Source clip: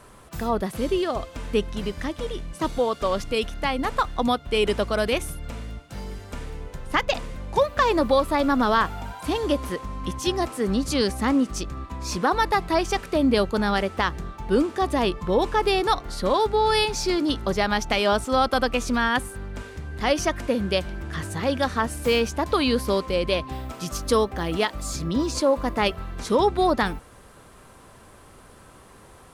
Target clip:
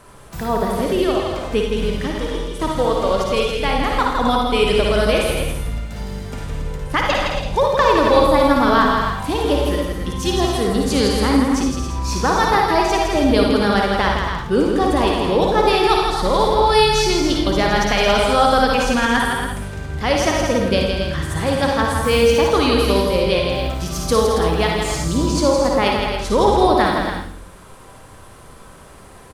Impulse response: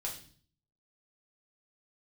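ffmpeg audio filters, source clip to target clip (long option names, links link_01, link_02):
-filter_complex "[0:a]aecho=1:1:163.3|277:0.562|0.398,asplit=2[link_01][link_02];[1:a]atrim=start_sample=2205,adelay=54[link_03];[link_02][link_03]afir=irnorm=-1:irlink=0,volume=-2dB[link_04];[link_01][link_04]amix=inputs=2:normalize=0,volume=2.5dB"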